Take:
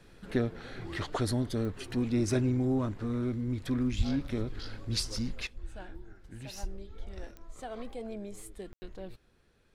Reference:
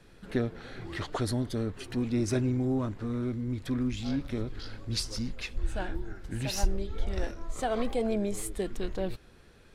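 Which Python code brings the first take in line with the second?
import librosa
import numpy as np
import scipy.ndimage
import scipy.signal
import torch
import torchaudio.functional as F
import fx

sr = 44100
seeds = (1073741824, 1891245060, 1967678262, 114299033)

y = fx.fix_declick_ar(x, sr, threshold=10.0)
y = fx.fix_deplosive(y, sr, at_s=(3.97,))
y = fx.fix_ambience(y, sr, seeds[0], print_start_s=9.23, print_end_s=9.73, start_s=8.73, end_s=8.82)
y = fx.gain(y, sr, db=fx.steps((0.0, 0.0), (5.47, 11.0)))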